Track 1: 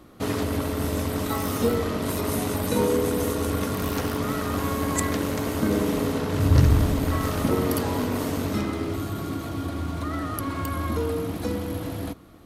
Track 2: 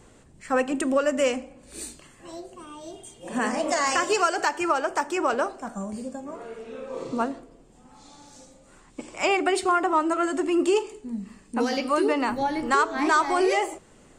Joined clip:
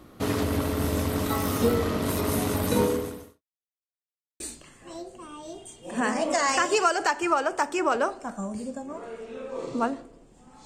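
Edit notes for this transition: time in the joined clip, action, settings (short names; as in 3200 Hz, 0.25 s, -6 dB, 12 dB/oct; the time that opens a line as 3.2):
track 1
2.81–3.42 fade out quadratic
3.42–4.4 mute
4.4 switch to track 2 from 1.78 s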